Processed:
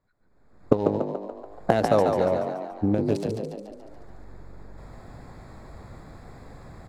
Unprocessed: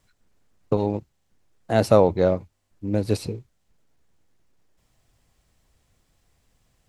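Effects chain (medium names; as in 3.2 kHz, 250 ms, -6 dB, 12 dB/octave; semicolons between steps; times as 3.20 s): local Wiener filter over 15 samples; recorder AGC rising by 36 dB/s; bass shelf 150 Hz -7 dB; on a send: frequency-shifting echo 143 ms, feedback 55%, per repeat +47 Hz, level -5 dB; on the sum: trim -4.5 dB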